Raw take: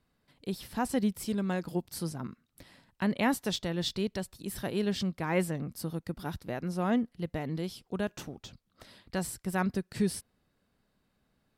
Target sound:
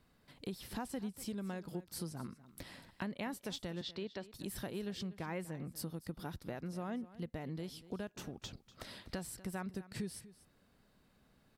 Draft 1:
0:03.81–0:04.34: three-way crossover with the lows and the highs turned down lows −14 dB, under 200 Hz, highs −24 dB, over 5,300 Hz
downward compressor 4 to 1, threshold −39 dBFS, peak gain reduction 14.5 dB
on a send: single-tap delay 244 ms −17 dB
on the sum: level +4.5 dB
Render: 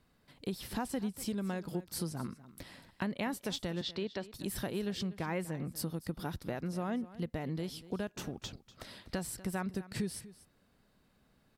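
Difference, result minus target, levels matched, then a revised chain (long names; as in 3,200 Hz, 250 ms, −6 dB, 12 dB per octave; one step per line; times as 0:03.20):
downward compressor: peak gain reduction −5 dB
0:03.81–0:04.34: three-way crossover with the lows and the highs turned down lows −14 dB, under 200 Hz, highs −24 dB, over 5,300 Hz
downward compressor 4 to 1, threshold −46 dBFS, peak gain reduction 19.5 dB
on a send: single-tap delay 244 ms −17 dB
on the sum: level +4.5 dB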